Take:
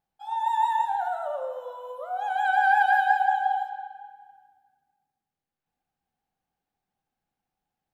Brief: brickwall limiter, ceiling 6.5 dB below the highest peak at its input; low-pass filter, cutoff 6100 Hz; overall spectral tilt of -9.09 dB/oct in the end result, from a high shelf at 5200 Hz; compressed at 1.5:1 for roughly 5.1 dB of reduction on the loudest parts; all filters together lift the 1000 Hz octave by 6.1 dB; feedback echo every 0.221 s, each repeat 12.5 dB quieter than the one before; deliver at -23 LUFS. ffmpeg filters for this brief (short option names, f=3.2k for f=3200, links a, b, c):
-af "lowpass=6.1k,equalizer=f=1k:t=o:g=8,highshelf=f=5.2k:g=7.5,acompressor=threshold=-26dB:ratio=1.5,alimiter=limit=-16dB:level=0:latency=1,aecho=1:1:221|442|663:0.237|0.0569|0.0137,volume=2.5dB"